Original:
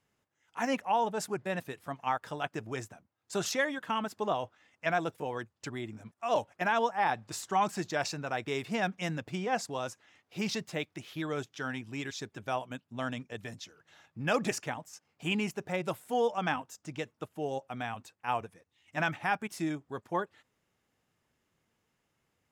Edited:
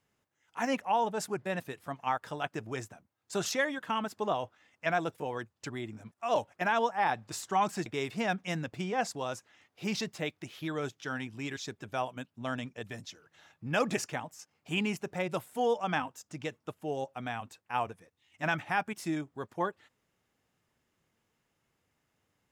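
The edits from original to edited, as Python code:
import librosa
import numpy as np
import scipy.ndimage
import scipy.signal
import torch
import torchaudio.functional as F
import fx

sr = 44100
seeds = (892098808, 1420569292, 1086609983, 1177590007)

y = fx.edit(x, sr, fx.cut(start_s=7.86, length_s=0.54), tone=tone)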